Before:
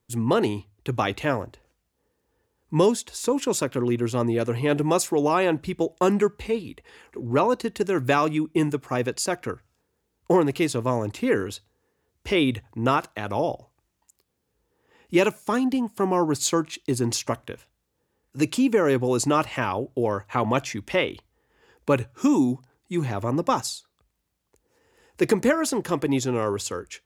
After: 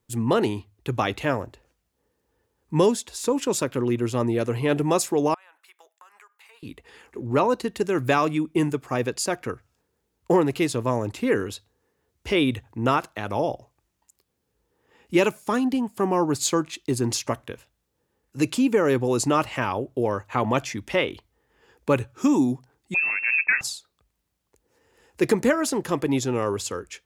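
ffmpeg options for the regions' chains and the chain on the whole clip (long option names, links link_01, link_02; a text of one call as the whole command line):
ffmpeg -i in.wav -filter_complex "[0:a]asettb=1/sr,asplit=3[link_01][link_02][link_03];[link_01]atrim=end=5.344[link_04];[link_02]atrim=start=5.34:end=6.63,asetpts=PTS-STARTPTS,afade=type=in:duration=0.004:curve=qsin,afade=type=out:start_time=1.286:duration=0.004:curve=qsin,highpass=frequency=1100:width=0.5412,highpass=frequency=1100:width=1.3066,equalizer=frequency=4400:width=0.36:gain=-13.5,acompressor=threshold=-47dB:ratio=12:attack=3.2:release=140:knee=1:detection=peak[link_05];[link_03]atrim=start=6.626[link_06];[link_04][link_05]acrossfade=duration=0.004:curve1=hsin:curve2=qsin[link_07];[link_07][link_06]acrossfade=duration=0.004:curve1=qsin:curve2=hsin,asettb=1/sr,asplit=3[link_08][link_09][link_10];[link_08]atrim=end=22.944[link_11];[link_09]atrim=start=22.94:end=23.61,asetpts=PTS-STARTPTS,afade=type=in:duration=0.004:curve=qsin,afade=type=out:start_time=0.666:duration=0.004:curve=qsin,lowshelf=frequency=170:gain=4.5,lowpass=frequency=2400:width_type=q:width=0.5098,lowpass=frequency=2400:width_type=q:width=0.6013,lowpass=frequency=2400:width_type=q:width=0.9,lowpass=frequency=2400:width_type=q:width=2.563,afreqshift=-2800[link_12];[link_10]atrim=start=23.606[link_13];[link_11][link_12]acrossfade=duration=0.004:curve1=hsin:curve2=qsin[link_14];[link_14][link_13]acrossfade=duration=0.004:curve1=qsin:curve2=hsin" out.wav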